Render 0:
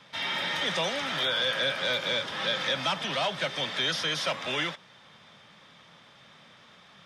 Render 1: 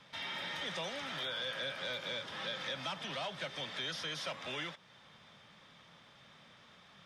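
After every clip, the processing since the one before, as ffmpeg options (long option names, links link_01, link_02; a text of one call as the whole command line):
ffmpeg -i in.wav -af "lowshelf=frequency=69:gain=8.5,acompressor=threshold=-41dB:ratio=1.5,volume=-5.5dB" out.wav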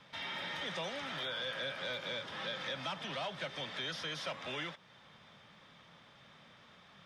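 ffmpeg -i in.wav -af "highshelf=frequency=4600:gain=-5.5,volume=1dB" out.wav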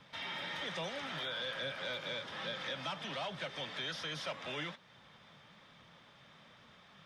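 ffmpeg -i in.wav -af "flanger=delay=0.1:depth=6.8:regen=80:speed=1.2:shape=sinusoidal,volume=4dB" out.wav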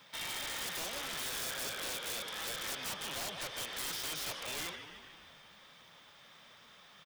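ffmpeg -i in.wav -filter_complex "[0:a]aemphasis=mode=production:type=bsi,asplit=8[link_01][link_02][link_03][link_04][link_05][link_06][link_07][link_08];[link_02]adelay=150,afreqshift=-63,volume=-10.5dB[link_09];[link_03]adelay=300,afreqshift=-126,volume=-14.9dB[link_10];[link_04]adelay=450,afreqshift=-189,volume=-19.4dB[link_11];[link_05]adelay=600,afreqshift=-252,volume=-23.8dB[link_12];[link_06]adelay=750,afreqshift=-315,volume=-28.2dB[link_13];[link_07]adelay=900,afreqshift=-378,volume=-32.7dB[link_14];[link_08]adelay=1050,afreqshift=-441,volume=-37.1dB[link_15];[link_01][link_09][link_10][link_11][link_12][link_13][link_14][link_15]amix=inputs=8:normalize=0,aeval=exprs='(mod(44.7*val(0)+1,2)-1)/44.7':channel_layout=same" out.wav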